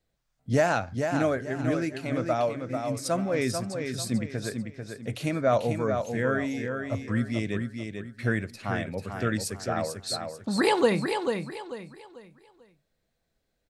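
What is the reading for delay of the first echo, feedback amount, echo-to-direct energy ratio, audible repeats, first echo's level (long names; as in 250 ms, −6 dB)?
442 ms, 32%, −5.5 dB, 3, −6.0 dB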